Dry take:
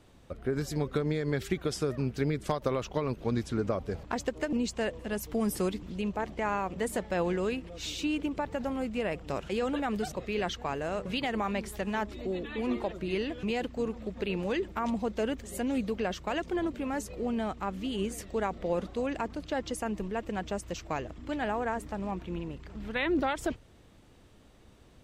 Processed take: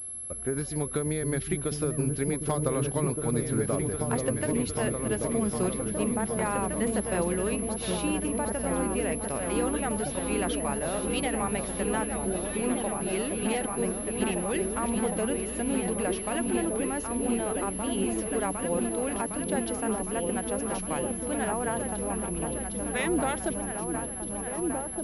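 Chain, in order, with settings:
echo whose low-pass opens from repeat to repeat 759 ms, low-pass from 200 Hz, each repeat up 2 octaves, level 0 dB
switching amplifier with a slow clock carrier 11,000 Hz

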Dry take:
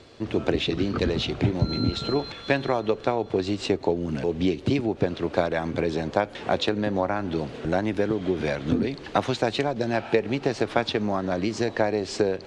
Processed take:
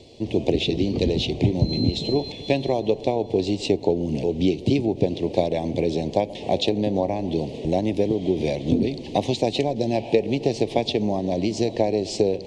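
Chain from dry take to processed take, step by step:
Butterworth band-reject 1,400 Hz, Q 0.79
on a send: delay with a low-pass on its return 131 ms, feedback 77%, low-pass 1,200 Hz, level −19 dB
on the sum: level +3 dB

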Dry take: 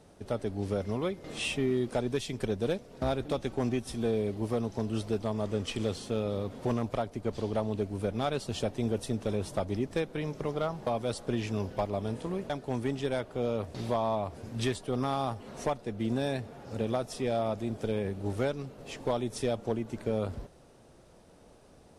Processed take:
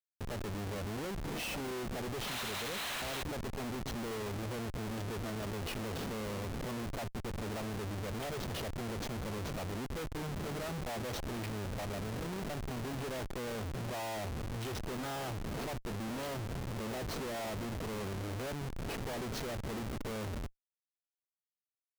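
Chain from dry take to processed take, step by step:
hearing-aid frequency compression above 2,600 Hz 1.5 to 1
sound drawn into the spectrogram noise, 0:02.27–0:03.23, 550–4,300 Hz −31 dBFS
comparator with hysteresis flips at −42.5 dBFS
level −6 dB

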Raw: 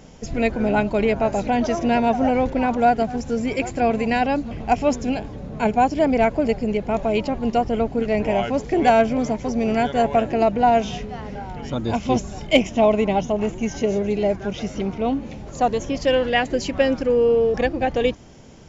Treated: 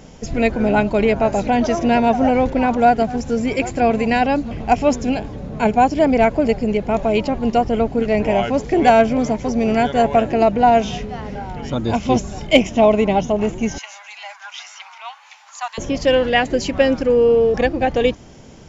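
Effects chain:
0:13.78–0:15.78: Butterworth high-pass 880 Hz 48 dB per octave
level +3.5 dB

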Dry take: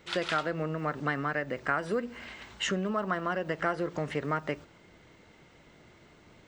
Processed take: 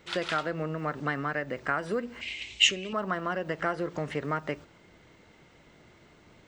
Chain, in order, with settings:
0:02.21–0:02.93: drawn EQ curve 110 Hz 0 dB, 160 Hz −12 dB, 310 Hz −1 dB, 1,500 Hz −15 dB, 2,400 Hz +15 dB, 4,700 Hz +7 dB, 7,900 Hz +9 dB, 12,000 Hz −16 dB

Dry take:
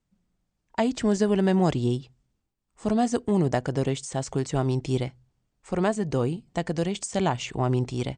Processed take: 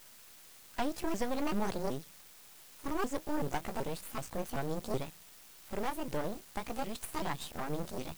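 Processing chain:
pitch shifter swept by a sawtooth +9 semitones, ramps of 380 ms
bit-depth reduction 8 bits, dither triangular
half-wave rectification
level −4.5 dB

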